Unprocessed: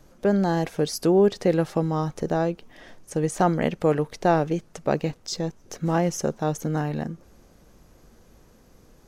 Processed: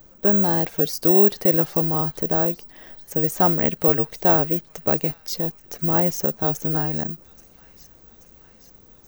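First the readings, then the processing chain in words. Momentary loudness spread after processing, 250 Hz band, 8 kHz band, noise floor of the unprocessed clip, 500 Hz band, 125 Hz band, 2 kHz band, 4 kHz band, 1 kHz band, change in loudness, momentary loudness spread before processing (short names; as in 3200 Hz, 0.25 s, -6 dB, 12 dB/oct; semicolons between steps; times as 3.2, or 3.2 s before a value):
10 LU, 0.0 dB, 0.0 dB, -56 dBFS, 0.0 dB, 0.0 dB, 0.0 dB, 0.0 dB, 0.0 dB, +5.5 dB, 10 LU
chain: thin delay 0.831 s, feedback 68%, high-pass 2300 Hz, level -18 dB; careless resampling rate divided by 2×, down filtered, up zero stuff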